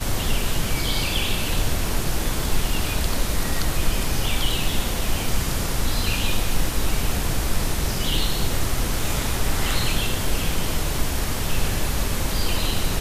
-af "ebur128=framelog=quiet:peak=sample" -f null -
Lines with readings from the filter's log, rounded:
Integrated loudness:
  I:         -24.7 LUFS
  Threshold: -34.7 LUFS
Loudness range:
  LRA:         0.5 LU
  Threshold: -44.7 LUFS
  LRA low:   -24.9 LUFS
  LRA high:  -24.4 LUFS
Sample peak:
  Peak:       -7.7 dBFS